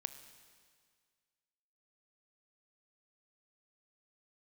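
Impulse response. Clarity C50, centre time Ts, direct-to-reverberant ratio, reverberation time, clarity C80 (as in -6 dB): 11.0 dB, 15 ms, 10.0 dB, 1.9 s, 12.0 dB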